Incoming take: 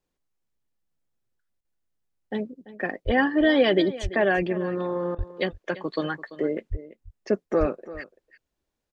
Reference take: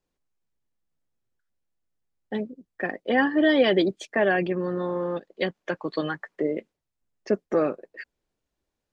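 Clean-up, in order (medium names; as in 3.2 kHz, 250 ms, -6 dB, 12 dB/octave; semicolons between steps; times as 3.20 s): de-plosive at 3.05/4.02/5.17/6.70/7.59 s; interpolate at 1.61/5.15 s, 35 ms; inverse comb 339 ms -16.5 dB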